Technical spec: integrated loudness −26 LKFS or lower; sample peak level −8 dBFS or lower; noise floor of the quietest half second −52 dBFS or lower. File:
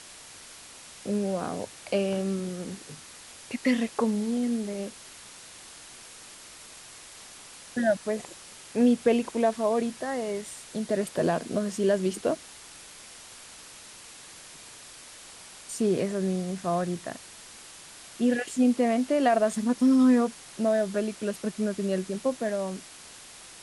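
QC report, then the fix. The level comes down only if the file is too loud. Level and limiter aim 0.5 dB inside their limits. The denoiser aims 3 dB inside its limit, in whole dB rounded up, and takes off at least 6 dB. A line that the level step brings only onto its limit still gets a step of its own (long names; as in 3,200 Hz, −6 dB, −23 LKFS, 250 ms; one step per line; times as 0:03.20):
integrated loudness −27.5 LKFS: in spec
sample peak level −11.0 dBFS: in spec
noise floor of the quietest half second −47 dBFS: out of spec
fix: broadband denoise 8 dB, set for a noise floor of −47 dBFS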